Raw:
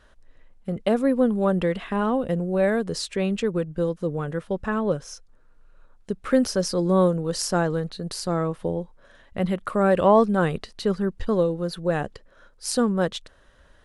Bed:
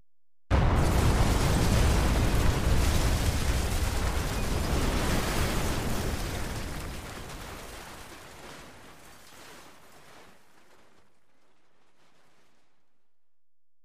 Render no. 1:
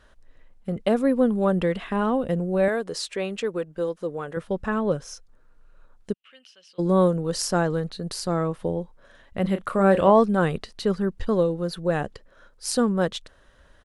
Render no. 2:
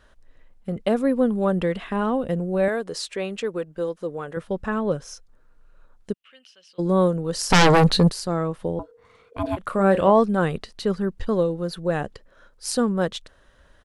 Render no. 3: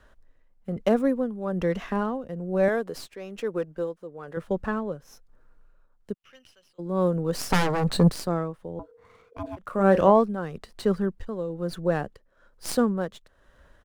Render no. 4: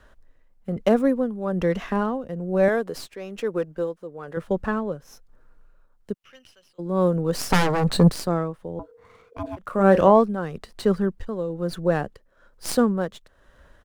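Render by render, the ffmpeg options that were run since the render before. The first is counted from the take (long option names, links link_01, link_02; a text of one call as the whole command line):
ffmpeg -i in.wav -filter_complex "[0:a]asettb=1/sr,asplit=3[link_01][link_02][link_03];[link_01]atrim=end=2.684[link_04];[link_02]atrim=start=2.68:end=4.37,asetpts=PTS-STARTPTS,afade=type=in:duration=0.004:curve=qsin,afade=type=out:start_time=1.686:duration=0.004:curve=qsin,bass=frequency=250:gain=-13,treble=frequency=4000:gain=-1[link_05];[link_03]atrim=start=4.366[link_06];[link_04][link_05]acrossfade=duration=0.004:curve1=hsin:curve2=qsin[link_07];[link_07][link_06]acrossfade=duration=0.004:curve1=qsin:curve2=hsin,asplit=3[link_08][link_09][link_10];[link_08]afade=type=out:start_time=6.12:duration=0.02[link_11];[link_09]bandpass=frequency=2900:width_type=q:width=11,afade=type=in:start_time=6.12:duration=0.02,afade=type=out:start_time=6.78:duration=0.02[link_12];[link_10]afade=type=in:start_time=6.78:duration=0.02[link_13];[link_11][link_12][link_13]amix=inputs=3:normalize=0,asplit=3[link_14][link_15][link_16];[link_14]afade=type=out:start_time=9.44:duration=0.02[link_17];[link_15]asplit=2[link_18][link_19];[link_19]adelay=31,volume=-9dB[link_20];[link_18][link_20]amix=inputs=2:normalize=0,afade=type=in:start_time=9.44:duration=0.02,afade=type=out:start_time=10.1:duration=0.02[link_21];[link_16]afade=type=in:start_time=10.1:duration=0.02[link_22];[link_17][link_21][link_22]amix=inputs=3:normalize=0" out.wav
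ffmpeg -i in.wav -filter_complex "[0:a]asplit=3[link_01][link_02][link_03];[link_01]afade=type=out:start_time=7.5:duration=0.02[link_04];[link_02]aeval=exprs='0.299*sin(PI/2*5.01*val(0)/0.299)':channel_layout=same,afade=type=in:start_time=7.5:duration=0.02,afade=type=out:start_time=8.09:duration=0.02[link_05];[link_03]afade=type=in:start_time=8.09:duration=0.02[link_06];[link_04][link_05][link_06]amix=inputs=3:normalize=0,asettb=1/sr,asplit=3[link_07][link_08][link_09];[link_07]atrim=end=8.794[link_10];[link_08]atrim=start=8.79:end=9.57,asetpts=PTS-STARTPTS,afade=type=in:duration=0.004:curve=qsin,afade=type=out:start_time=0.776:duration=0.004:curve=qsin,aeval=exprs='val(0)*sin(2*PI*470*n/s)':channel_layout=same[link_11];[link_09]atrim=start=9.566[link_12];[link_10][link_11]acrossfade=duration=0.004:curve1=hsin:curve2=qsin[link_13];[link_13][link_12]acrossfade=duration=0.004:curve1=qsin:curve2=hsin" out.wav
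ffmpeg -i in.wav -filter_complex "[0:a]acrossover=split=200|2300[link_01][link_02][link_03];[link_03]aeval=exprs='max(val(0),0)':channel_layout=same[link_04];[link_01][link_02][link_04]amix=inputs=3:normalize=0,tremolo=f=1.1:d=0.72" out.wav
ffmpeg -i in.wav -af "volume=3dB,alimiter=limit=-3dB:level=0:latency=1" out.wav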